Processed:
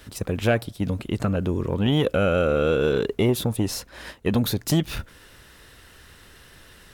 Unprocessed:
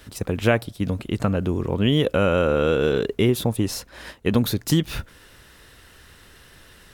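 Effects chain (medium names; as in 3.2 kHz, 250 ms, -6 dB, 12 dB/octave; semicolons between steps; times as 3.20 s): transformer saturation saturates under 400 Hz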